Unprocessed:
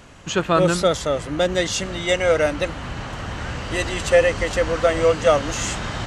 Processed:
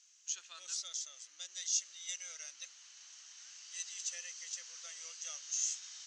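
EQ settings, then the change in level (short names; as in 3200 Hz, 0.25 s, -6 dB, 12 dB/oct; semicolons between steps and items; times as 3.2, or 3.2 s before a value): band-pass 6200 Hz, Q 5.4; air absorption 130 m; differentiator; +8.0 dB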